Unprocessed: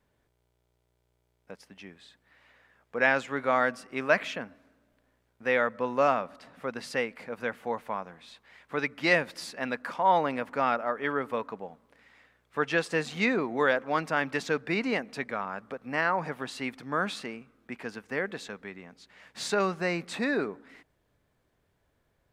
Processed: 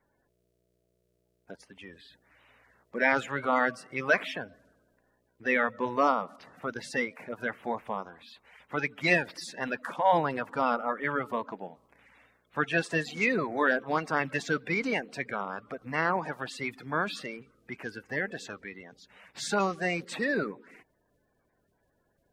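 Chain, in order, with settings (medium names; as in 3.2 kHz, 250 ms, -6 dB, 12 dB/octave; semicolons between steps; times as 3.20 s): coarse spectral quantiser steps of 30 dB; 1.83–3.53 s: transient shaper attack -1 dB, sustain +3 dB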